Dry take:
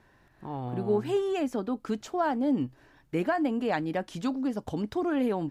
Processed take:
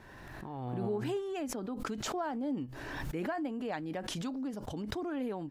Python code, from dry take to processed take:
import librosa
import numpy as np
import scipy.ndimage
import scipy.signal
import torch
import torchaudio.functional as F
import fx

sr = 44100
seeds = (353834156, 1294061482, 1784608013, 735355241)

y = fx.pre_swell(x, sr, db_per_s=26.0)
y = y * librosa.db_to_amplitude(-9.0)